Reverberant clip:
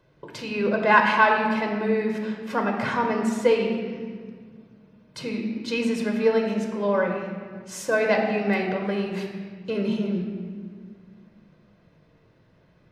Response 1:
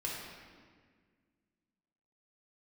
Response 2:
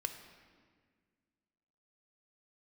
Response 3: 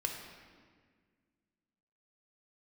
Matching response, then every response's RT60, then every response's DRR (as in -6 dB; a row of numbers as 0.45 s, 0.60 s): 3; 1.7 s, 1.7 s, 1.7 s; -4.5 dB, 6.5 dB, 1.5 dB